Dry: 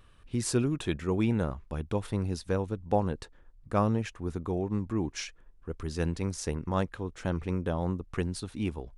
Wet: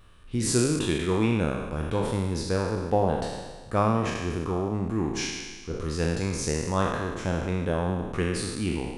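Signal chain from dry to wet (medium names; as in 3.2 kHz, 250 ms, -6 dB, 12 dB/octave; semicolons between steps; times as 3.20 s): spectral sustain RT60 1.41 s; de-hum 68.81 Hz, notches 39; trim +2 dB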